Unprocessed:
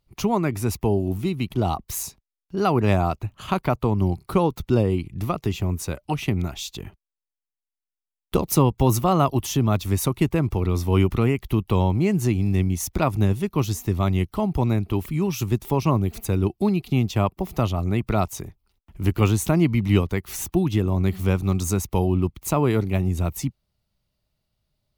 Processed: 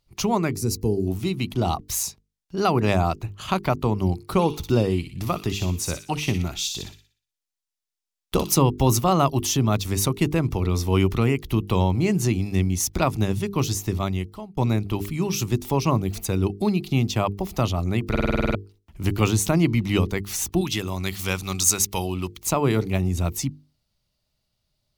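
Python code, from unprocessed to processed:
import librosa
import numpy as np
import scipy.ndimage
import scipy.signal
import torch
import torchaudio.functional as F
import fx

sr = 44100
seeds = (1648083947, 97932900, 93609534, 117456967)

y = fx.spec_box(x, sr, start_s=0.53, length_s=0.54, low_hz=510.0, high_hz=3900.0, gain_db=-13)
y = fx.echo_wet_highpass(y, sr, ms=60, feedback_pct=42, hz=2600.0, wet_db=-4.0, at=(4.33, 8.55))
y = fx.tilt_shelf(y, sr, db=-7.5, hz=970.0, at=(20.61, 22.42))
y = fx.edit(y, sr, fx.fade_out_span(start_s=13.89, length_s=0.68),
    fx.stutter_over(start_s=18.1, slice_s=0.05, count=9), tone=tone)
y = fx.peak_eq(y, sr, hz=5500.0, db=6.5, octaves=1.6)
y = fx.hum_notches(y, sr, base_hz=50, count=9)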